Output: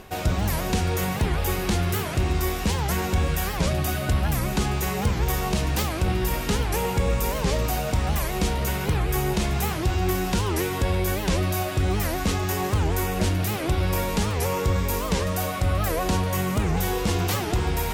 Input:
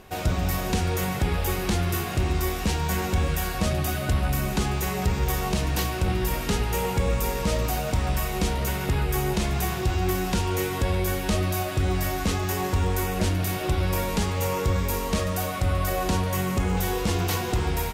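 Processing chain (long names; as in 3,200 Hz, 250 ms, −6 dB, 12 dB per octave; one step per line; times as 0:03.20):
reversed playback
upward compression, threshold −25 dBFS
reversed playback
wow of a warped record 78 rpm, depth 250 cents
level +1 dB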